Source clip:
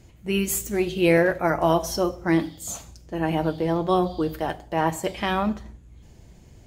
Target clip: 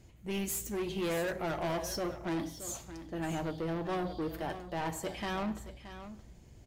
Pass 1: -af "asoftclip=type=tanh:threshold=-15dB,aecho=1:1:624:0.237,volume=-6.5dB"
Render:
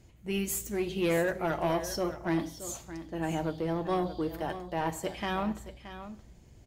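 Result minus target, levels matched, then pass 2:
soft clip: distortion -8 dB
-af "asoftclip=type=tanh:threshold=-24dB,aecho=1:1:624:0.237,volume=-6.5dB"

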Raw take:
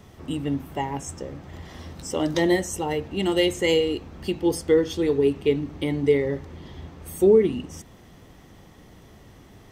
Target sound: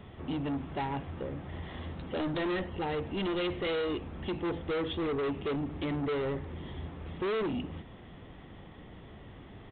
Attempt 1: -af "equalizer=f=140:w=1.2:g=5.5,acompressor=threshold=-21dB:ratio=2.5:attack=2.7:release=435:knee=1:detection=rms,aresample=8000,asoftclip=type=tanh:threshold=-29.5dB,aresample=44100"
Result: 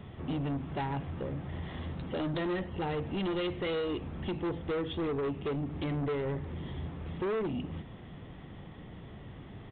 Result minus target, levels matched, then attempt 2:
compressor: peak gain reduction +8.5 dB; 125 Hz band +3.5 dB
-af "aresample=8000,asoftclip=type=tanh:threshold=-29.5dB,aresample=44100"

